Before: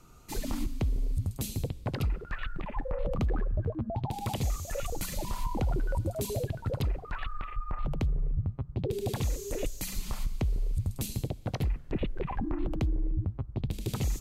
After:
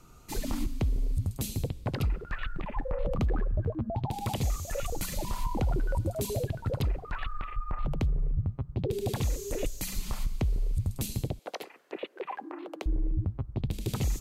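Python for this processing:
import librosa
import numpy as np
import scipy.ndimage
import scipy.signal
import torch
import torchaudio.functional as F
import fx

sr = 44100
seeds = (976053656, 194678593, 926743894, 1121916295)

y = fx.highpass(x, sr, hz=390.0, slope=24, at=(11.39, 12.86))
y = y * 10.0 ** (1.0 / 20.0)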